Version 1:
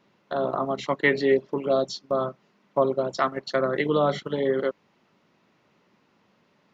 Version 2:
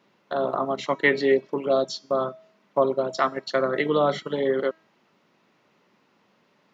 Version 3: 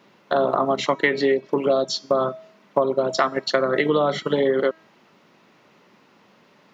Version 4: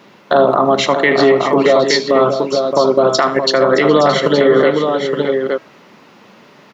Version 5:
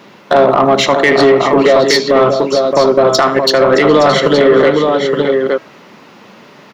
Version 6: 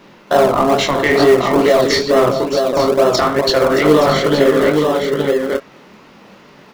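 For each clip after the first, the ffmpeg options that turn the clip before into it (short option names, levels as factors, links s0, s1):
-af "highpass=f=190:p=1,bandreject=f=321.8:t=h:w=4,bandreject=f=643.6:t=h:w=4,bandreject=f=965.4:t=h:w=4,bandreject=f=1287.2:t=h:w=4,bandreject=f=1609:t=h:w=4,bandreject=f=1930.8:t=h:w=4,bandreject=f=2252.6:t=h:w=4,bandreject=f=2574.4:t=h:w=4,bandreject=f=2896.2:t=h:w=4,bandreject=f=3218:t=h:w=4,bandreject=f=3539.8:t=h:w=4,bandreject=f=3861.6:t=h:w=4,bandreject=f=4183.4:t=h:w=4,bandreject=f=4505.2:t=h:w=4,bandreject=f=4827:t=h:w=4,bandreject=f=5148.8:t=h:w=4,bandreject=f=5470.6:t=h:w=4,bandreject=f=5792.4:t=h:w=4,bandreject=f=6114.2:t=h:w=4,bandreject=f=6436:t=h:w=4,bandreject=f=6757.8:t=h:w=4,bandreject=f=7079.6:t=h:w=4,bandreject=f=7401.4:t=h:w=4,bandreject=f=7723.2:t=h:w=4,bandreject=f=8045:t=h:w=4,bandreject=f=8366.8:t=h:w=4,bandreject=f=8688.6:t=h:w=4,bandreject=f=9010.4:t=h:w=4,bandreject=f=9332.2:t=h:w=4,bandreject=f=9654:t=h:w=4,volume=1.19"
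-af "acompressor=threshold=0.0631:ratio=10,volume=2.66"
-af "aecho=1:1:76|418|620|869:0.168|0.119|0.282|0.422,alimiter=level_in=3.76:limit=0.891:release=50:level=0:latency=1,volume=0.891"
-af "acontrast=43,volume=0.891"
-filter_complex "[0:a]flanger=delay=19.5:depth=7.3:speed=2.3,asplit=2[s0][s1];[s1]acrusher=samples=37:mix=1:aa=0.000001:lfo=1:lforange=37:lforate=2.2,volume=0.282[s2];[s0][s2]amix=inputs=2:normalize=0,volume=0.841"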